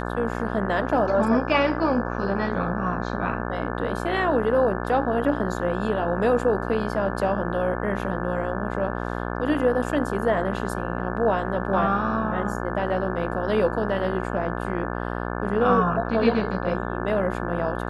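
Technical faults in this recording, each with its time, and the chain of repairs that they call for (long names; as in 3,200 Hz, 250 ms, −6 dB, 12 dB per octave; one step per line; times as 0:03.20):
mains buzz 60 Hz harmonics 29 −29 dBFS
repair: hum removal 60 Hz, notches 29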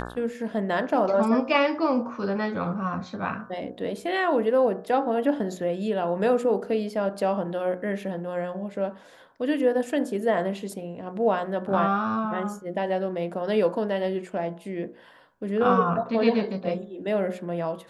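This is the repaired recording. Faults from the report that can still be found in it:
none of them is left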